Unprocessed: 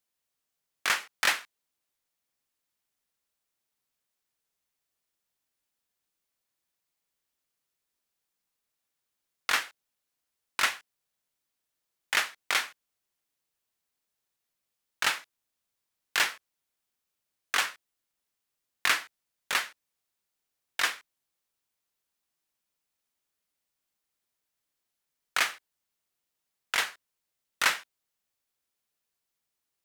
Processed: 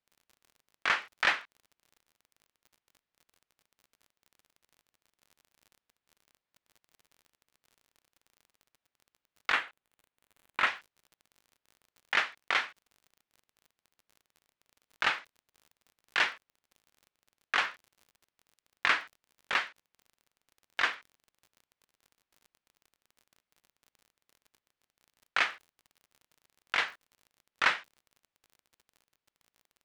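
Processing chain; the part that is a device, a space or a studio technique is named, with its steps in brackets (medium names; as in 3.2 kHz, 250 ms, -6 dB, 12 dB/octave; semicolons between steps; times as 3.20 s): lo-fi chain (low-pass 3.2 kHz 12 dB/octave; wow and flutter; crackle 42 per s -46 dBFS); 9.52–10.67 s: peaking EQ 5.3 kHz -9 dB 0.62 oct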